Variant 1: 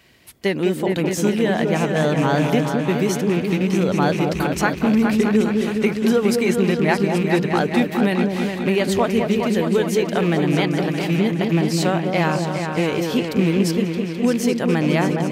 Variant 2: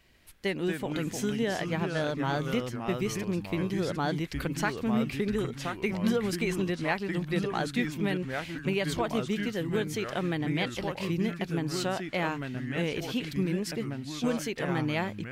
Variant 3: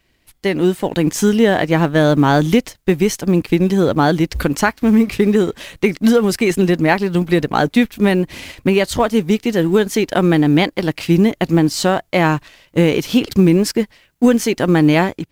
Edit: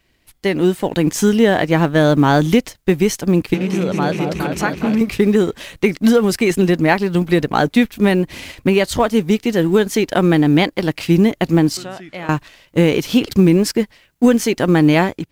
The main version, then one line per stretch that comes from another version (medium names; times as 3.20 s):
3
3.54–5.01 s: from 1
11.77–12.29 s: from 2